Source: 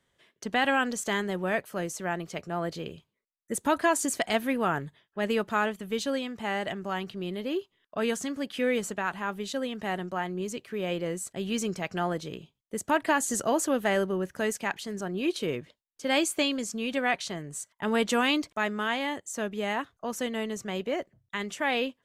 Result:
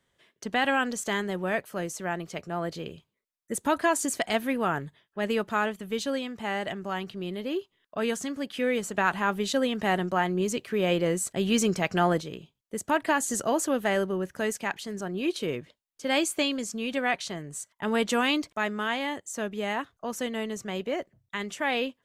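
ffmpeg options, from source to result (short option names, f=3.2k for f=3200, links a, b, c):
-filter_complex "[0:a]asettb=1/sr,asplit=3[a][b][c];[a]atrim=end=8.944[d];[b]atrim=start=8.94:end=12.22,asetpts=PTS-STARTPTS,afade=t=in:d=0.004:c=qsin,afade=t=out:st=3.276:d=0.004:c=qsin,acontrast=51[e];[c]atrim=start=12.216[f];[d][e]acrossfade=d=0.004:c1=hsin:c2=qsin[g];[g][f]acrossfade=d=0.004:c1=qsin:c2=hsin"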